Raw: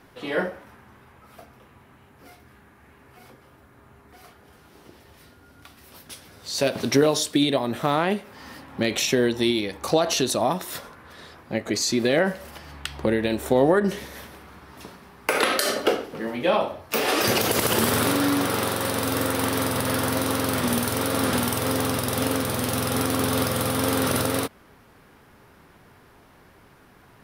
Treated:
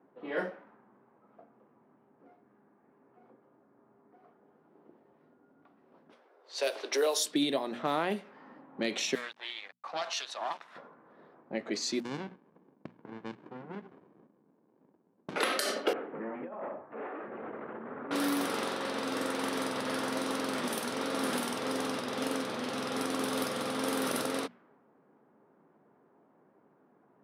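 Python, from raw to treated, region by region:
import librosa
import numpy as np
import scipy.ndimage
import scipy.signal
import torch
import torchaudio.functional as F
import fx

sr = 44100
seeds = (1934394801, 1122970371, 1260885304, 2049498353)

y = fx.chain(x, sr, fx.steep_highpass(hz=370.0, slope=36),
    fx.high_shelf(hz=5100.0, db=5.5), at=(6.12, 7.25))
y = fx.chain(y, sr, fx.highpass(hz=770.0, slope=24),
    fx.sample_gate(floor_db=-36.5),
    fx.doppler_dist(depth_ms=0.19), at=(9.15, 10.76))
y = fx.chain(y, sr, fx.highpass(hz=1000.0, slope=12),
    fx.running_max(window=65), at=(12.0, 15.36))
y = fx.chain(y, sr, fx.over_compress(threshold_db=-26.0, ratio=-0.5),
    fx.clip_hard(threshold_db=-27.0),
    fx.lowpass(hz=2000.0, slope=24), at=(15.93, 18.11))
y = fx.env_lowpass(y, sr, base_hz=760.0, full_db=-18.0)
y = scipy.signal.sosfilt(scipy.signal.butter(4, 180.0, 'highpass', fs=sr, output='sos'), y)
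y = fx.hum_notches(y, sr, base_hz=60, count=4)
y = y * 10.0 ** (-8.0 / 20.0)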